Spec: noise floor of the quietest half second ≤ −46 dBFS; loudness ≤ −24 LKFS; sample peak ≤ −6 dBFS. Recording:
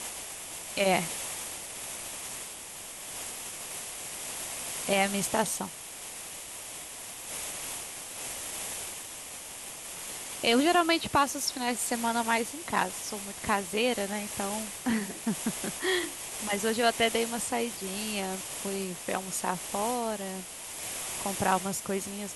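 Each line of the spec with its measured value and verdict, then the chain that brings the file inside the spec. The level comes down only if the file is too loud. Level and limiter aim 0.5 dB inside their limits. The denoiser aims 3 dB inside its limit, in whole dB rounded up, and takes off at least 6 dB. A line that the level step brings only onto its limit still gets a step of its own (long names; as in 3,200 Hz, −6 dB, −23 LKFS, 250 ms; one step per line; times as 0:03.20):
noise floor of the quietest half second −43 dBFS: out of spec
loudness −31.0 LKFS: in spec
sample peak −11.5 dBFS: in spec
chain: broadband denoise 6 dB, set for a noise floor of −43 dBFS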